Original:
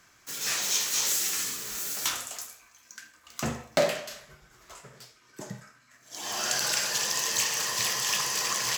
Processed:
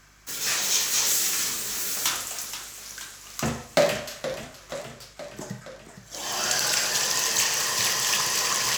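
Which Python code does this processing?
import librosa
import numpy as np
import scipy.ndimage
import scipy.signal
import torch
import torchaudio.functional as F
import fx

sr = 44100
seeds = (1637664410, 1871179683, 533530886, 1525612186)

y = fx.add_hum(x, sr, base_hz=50, snr_db=32)
y = fx.echo_warbled(y, sr, ms=474, feedback_pct=63, rate_hz=2.8, cents=176, wet_db=-11.5)
y = y * librosa.db_to_amplitude(3.5)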